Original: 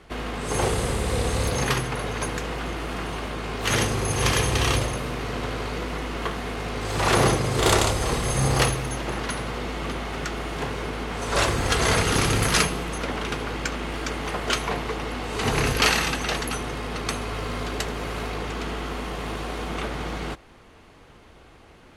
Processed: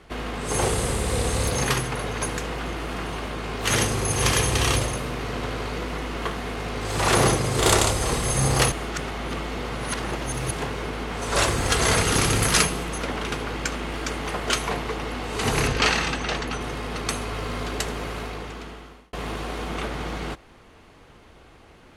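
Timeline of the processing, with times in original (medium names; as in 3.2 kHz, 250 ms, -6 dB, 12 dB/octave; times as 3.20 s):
8.72–10.51 s: reverse
15.67–16.61 s: distance through air 85 m
17.98–19.13 s: fade out
whole clip: dynamic bell 9.1 kHz, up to +5 dB, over -42 dBFS, Q 0.89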